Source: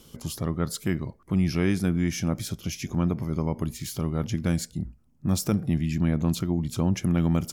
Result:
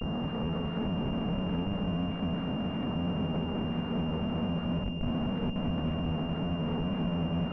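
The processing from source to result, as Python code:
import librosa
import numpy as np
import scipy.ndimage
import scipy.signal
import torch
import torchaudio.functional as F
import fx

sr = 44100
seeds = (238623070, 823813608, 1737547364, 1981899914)

p1 = fx.spec_swells(x, sr, rise_s=0.59)
p2 = scipy.signal.sosfilt(scipy.signal.butter(2, 120.0, 'highpass', fs=sr, output='sos'), p1)
p3 = p2 + 0.75 * np.pad(p2, (int(4.3 * sr / 1000.0), 0))[:len(p2)]
p4 = fx.over_compress(p3, sr, threshold_db=-27.0, ratio=-0.5)
p5 = fx.leveller(p4, sr, passes=1)
p6 = fx.schmitt(p5, sr, flips_db=-32.5)
p7 = fx.air_absorb(p6, sr, metres=150.0)
p8 = p7 + fx.echo_filtered(p7, sr, ms=204, feedback_pct=82, hz=940.0, wet_db=-8, dry=0)
p9 = fx.pwm(p8, sr, carrier_hz=2800.0)
y = p9 * 10.0 ** (-7.0 / 20.0)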